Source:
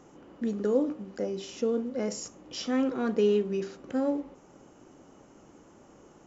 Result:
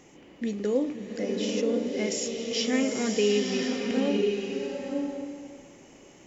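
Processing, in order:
high shelf with overshoot 1,700 Hz +6 dB, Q 3
slow-attack reverb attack 980 ms, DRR 1.5 dB

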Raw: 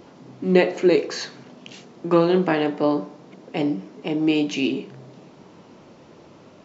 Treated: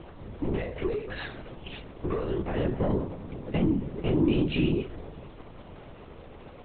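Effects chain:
downward compressor 10 to 1, threshold −27 dBFS, peak gain reduction 17 dB
leveller curve on the samples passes 2
linear-prediction vocoder at 8 kHz whisper
0:02.55–0:04.83: parametric band 190 Hz +8 dB 2.3 octaves
level −5 dB

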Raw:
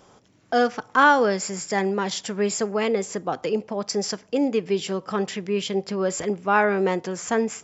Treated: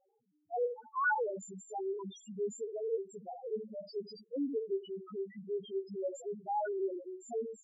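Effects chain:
low-shelf EQ 210 Hz −5 dB
reverb whose tail is shaped and stops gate 100 ms rising, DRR 7 dB
spectral peaks only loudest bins 1
level −6 dB

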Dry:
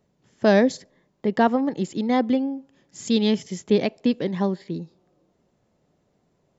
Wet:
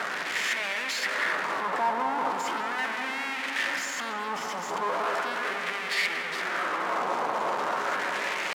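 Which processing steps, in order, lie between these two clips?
sign of each sample alone
high-pass filter 210 Hz 12 dB per octave
high-shelf EQ 5,500 Hz +5 dB
tempo change 0.77×
auto-filter band-pass sine 0.38 Hz 960–2,200 Hz
feedback echo with a low-pass in the loop 192 ms, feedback 78%, low-pass 2,000 Hz, level −8 dB
spring reverb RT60 3.7 s, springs 34/44 ms, chirp 75 ms, DRR 8.5 dB
level +5 dB

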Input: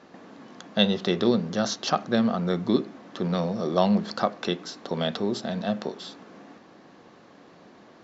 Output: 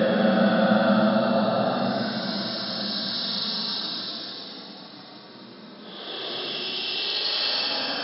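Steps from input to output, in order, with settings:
extreme stretch with random phases 25×, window 0.05 s, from 0:01.58
feedback delay with all-pass diffusion 532 ms, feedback 59%, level −15 dB
brick-wall band-pass 110–5,400 Hz
level +2.5 dB

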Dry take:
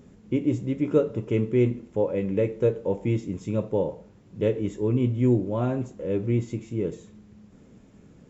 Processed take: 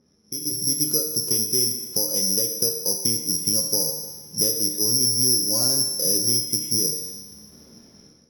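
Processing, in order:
downward compressor, threshold −31 dBFS, peak gain reduction 15 dB
dynamic equaliser 160 Hz, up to +6 dB, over −47 dBFS, Q 1.4
bad sample-rate conversion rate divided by 8×, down filtered, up zero stuff
low-pass that shuts in the quiet parts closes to 1,900 Hz, open at −26.5 dBFS
tuned comb filter 77 Hz, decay 1.3 s, harmonics all, mix 80%
on a send: echo machine with several playback heads 150 ms, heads first and second, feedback 44%, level −24 dB
on the sum: automatic gain control gain up to 15 dB
low-shelf EQ 110 Hz −10.5 dB

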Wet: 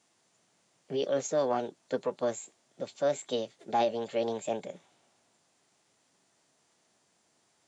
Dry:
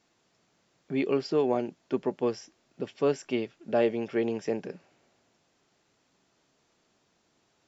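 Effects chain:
high-pass filter 92 Hz
parametric band 5,900 Hz +6.5 dB 1.5 octaves
formants moved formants +5 semitones
level −2.5 dB

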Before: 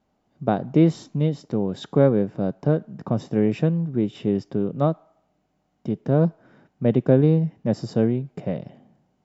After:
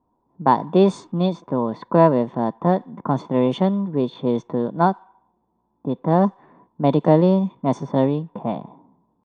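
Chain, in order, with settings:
pitch shifter +3 semitones
hollow resonant body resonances 1,000/3,500 Hz, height 17 dB, ringing for 30 ms
low-pass that shuts in the quiet parts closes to 640 Hz, open at −14 dBFS
level +1 dB

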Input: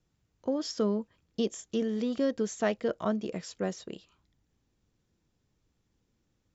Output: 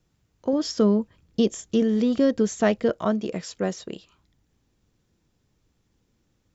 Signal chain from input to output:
0:00.53–0:02.90: low-shelf EQ 210 Hz +8 dB
level +6 dB

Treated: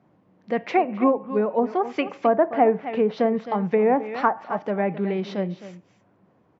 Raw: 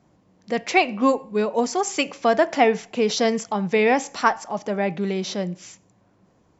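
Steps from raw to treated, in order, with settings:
band-pass filter 110–2,400 Hz
single-tap delay 262 ms −14 dB
treble cut that deepens with the level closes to 1,100 Hz, closed at −16 dBFS

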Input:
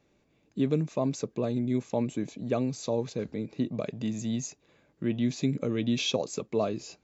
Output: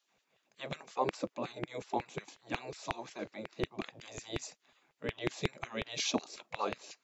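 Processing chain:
dynamic equaliser 570 Hz, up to +3 dB, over −37 dBFS, Q 0.79
auto-filter high-pass saw down 5.5 Hz 220–2,500 Hz
gate on every frequency bin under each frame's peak −10 dB weak

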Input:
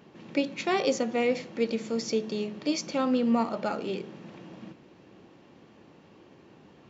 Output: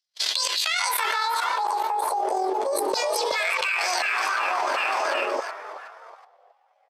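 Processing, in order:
pitch shift by two crossfaded delay taps +10.5 semitones
noise gate −47 dBFS, range −51 dB
high-shelf EQ 3,000 Hz −9 dB
brickwall limiter −26 dBFS, peak gain reduction 10.5 dB
output level in coarse steps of 20 dB
slap from a distant wall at 110 metres, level −19 dB
auto-filter high-pass saw down 0.34 Hz 320–4,900 Hz
on a send: echo with shifted repeats 372 ms, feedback 43%, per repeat +47 Hz, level −14.5 dB
on the sum: envelope flattener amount 100%
level +8.5 dB

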